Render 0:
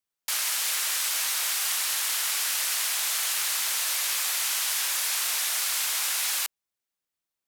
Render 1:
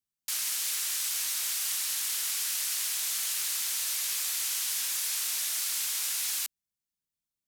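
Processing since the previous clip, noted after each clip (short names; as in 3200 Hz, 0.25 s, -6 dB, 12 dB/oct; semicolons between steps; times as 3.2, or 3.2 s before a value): EQ curve 200 Hz 0 dB, 480 Hz -14 dB, 830 Hz -16 dB, 6200 Hz -6 dB; gain +3 dB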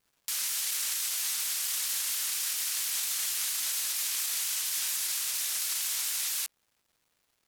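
limiter -29 dBFS, peak gain reduction 10 dB; crackle 550/s -67 dBFS; shaped vibrato saw down 4.3 Hz, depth 100 cents; gain +7 dB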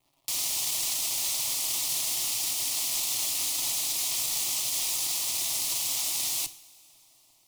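half-waves squared off; fixed phaser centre 310 Hz, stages 8; two-slope reverb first 0.53 s, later 4.3 s, from -19 dB, DRR 11 dB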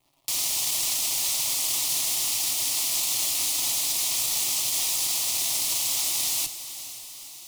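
diffused feedback echo 0.485 s, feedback 60%, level -13 dB; gain +3 dB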